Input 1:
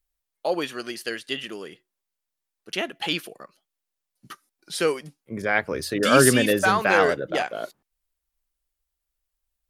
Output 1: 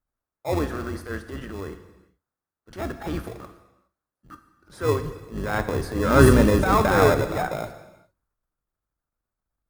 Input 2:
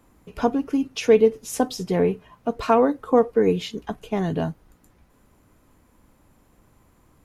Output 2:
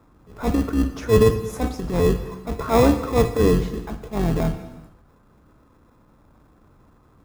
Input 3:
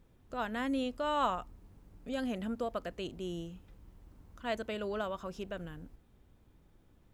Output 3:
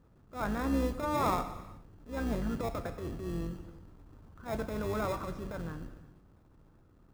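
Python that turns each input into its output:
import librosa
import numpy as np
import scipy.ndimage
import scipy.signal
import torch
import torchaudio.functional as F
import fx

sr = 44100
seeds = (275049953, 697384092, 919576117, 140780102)

p1 = fx.octave_divider(x, sr, octaves=2, level_db=1.0)
p2 = fx.highpass(p1, sr, hz=41.0, slope=6)
p3 = fx.high_shelf_res(p2, sr, hz=1900.0, db=-12.5, q=3.0)
p4 = fx.transient(p3, sr, attack_db=-11, sustain_db=5)
p5 = fx.dynamic_eq(p4, sr, hz=1500.0, q=1.1, threshold_db=-33.0, ratio=4.0, max_db=-4)
p6 = fx.sample_hold(p5, sr, seeds[0], rate_hz=1500.0, jitter_pct=0)
p7 = p5 + (p6 * 10.0 ** (-5.5 / 20.0))
p8 = fx.rev_gated(p7, sr, seeds[1], gate_ms=440, shape='falling', drr_db=9.0)
y = p8 * 10.0 ** (-1.0 / 20.0)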